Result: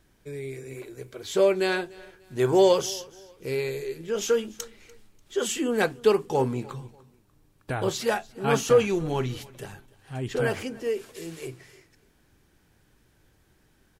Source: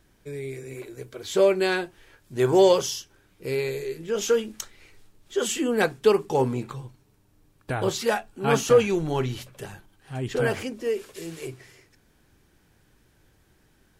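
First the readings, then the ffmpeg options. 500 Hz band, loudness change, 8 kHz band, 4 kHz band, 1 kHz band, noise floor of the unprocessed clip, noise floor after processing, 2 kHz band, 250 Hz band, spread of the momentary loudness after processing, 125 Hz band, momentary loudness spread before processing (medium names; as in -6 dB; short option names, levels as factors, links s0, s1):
-1.5 dB, -1.5 dB, -1.5 dB, -1.5 dB, -1.5 dB, -63 dBFS, -64 dBFS, -1.5 dB, -1.5 dB, 19 LU, -1.5 dB, 20 LU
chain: -af "aecho=1:1:294|588:0.075|0.024,volume=0.841"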